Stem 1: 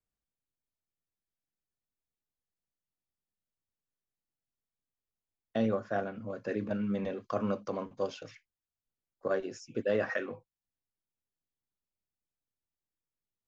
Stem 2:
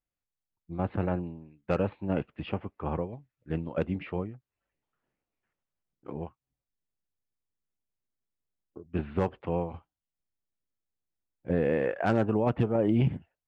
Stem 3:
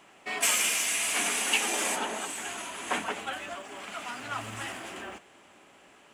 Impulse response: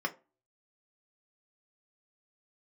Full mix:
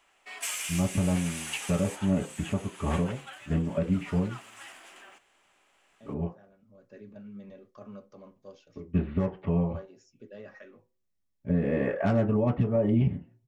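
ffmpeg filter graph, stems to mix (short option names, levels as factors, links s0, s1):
-filter_complex "[0:a]adelay=450,volume=0.211,afade=t=in:st=6.57:d=0.39:silence=0.334965,asplit=2[s0][s1];[s1]volume=0.299[s2];[1:a]lowshelf=f=120:g=7.5,volume=1.26,asplit=2[s3][s4];[s4]volume=0.596[s5];[2:a]highpass=f=930:p=1,volume=0.398[s6];[3:a]atrim=start_sample=2205[s7];[s2][s5]amix=inputs=2:normalize=0[s8];[s8][s7]afir=irnorm=-1:irlink=0[s9];[s0][s3][s6][s9]amix=inputs=4:normalize=0,alimiter=limit=0.158:level=0:latency=1:release=279"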